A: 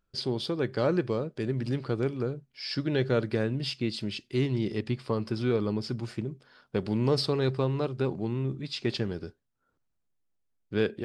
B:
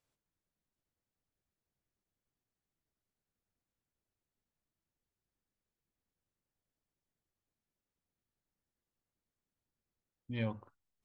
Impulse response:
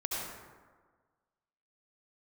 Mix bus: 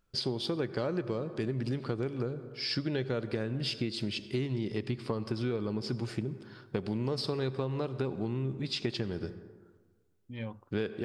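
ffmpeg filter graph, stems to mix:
-filter_complex "[0:a]volume=2dB,asplit=2[link_01][link_02];[link_02]volume=-18.5dB[link_03];[1:a]volume=-3dB[link_04];[2:a]atrim=start_sample=2205[link_05];[link_03][link_05]afir=irnorm=-1:irlink=0[link_06];[link_01][link_04][link_06]amix=inputs=3:normalize=0,acompressor=threshold=-29dB:ratio=6"

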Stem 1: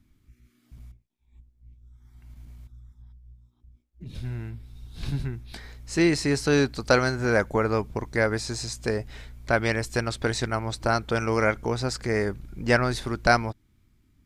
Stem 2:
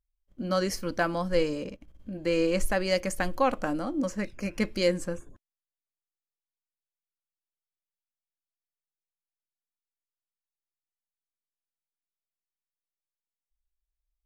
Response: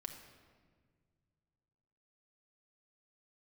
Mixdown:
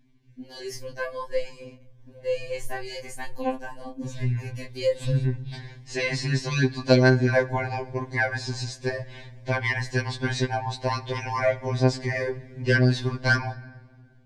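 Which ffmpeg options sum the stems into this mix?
-filter_complex "[0:a]lowpass=5100,volume=-4dB,asplit=2[link_01][link_02];[link_02]volume=-5.5dB[link_03];[1:a]flanger=delay=19:depth=6.5:speed=0.2,volume=-6dB,asplit=2[link_04][link_05];[link_05]volume=-14dB[link_06];[2:a]atrim=start_sample=2205[link_07];[link_03][link_06]amix=inputs=2:normalize=0[link_08];[link_08][link_07]afir=irnorm=-1:irlink=0[link_09];[link_01][link_04][link_09]amix=inputs=3:normalize=0,acontrast=40,asuperstop=centerf=1300:order=12:qfactor=4.5,afftfilt=real='re*2.45*eq(mod(b,6),0)':imag='im*2.45*eq(mod(b,6),0)':win_size=2048:overlap=0.75"

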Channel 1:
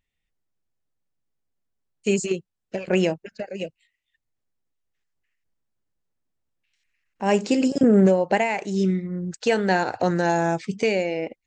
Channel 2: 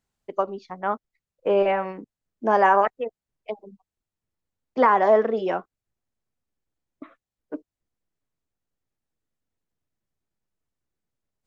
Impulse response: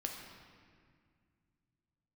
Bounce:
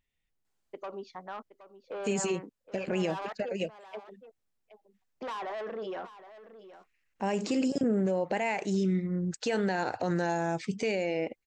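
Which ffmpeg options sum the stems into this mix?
-filter_complex "[0:a]volume=-2dB[link_01];[1:a]asoftclip=type=tanh:threshold=-20dB,lowshelf=frequency=240:gain=-10.5,alimiter=level_in=5dB:limit=-24dB:level=0:latency=1:release=23,volume=-5dB,adelay=450,volume=-2.5dB,asplit=2[link_02][link_03];[link_03]volume=-14.5dB,aecho=0:1:770:1[link_04];[link_01][link_02][link_04]amix=inputs=3:normalize=0,alimiter=limit=-20.5dB:level=0:latency=1:release=64"

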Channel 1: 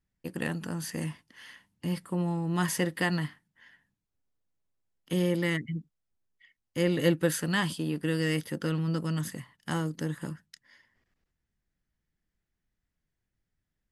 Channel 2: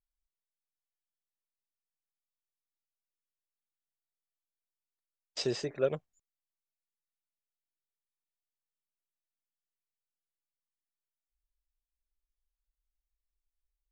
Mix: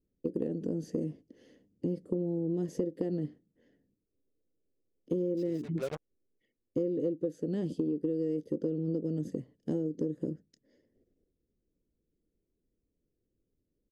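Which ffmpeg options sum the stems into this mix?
ffmpeg -i stem1.wav -i stem2.wav -filter_complex "[0:a]firequalizer=gain_entry='entry(160,0);entry(280,11);entry(470,13);entry(950,-24);entry(6400,-12);entry(9300,-24)':delay=0.05:min_phase=1,volume=0dB,asplit=2[link_01][link_02];[1:a]acrusher=bits=5:mix=0:aa=0.5,volume=0dB[link_03];[link_02]apad=whole_len=613440[link_04];[link_03][link_04]sidechaincompress=threshold=-35dB:ratio=3:attack=16:release=373[link_05];[link_01][link_05]amix=inputs=2:normalize=0,acompressor=threshold=-28dB:ratio=12" out.wav

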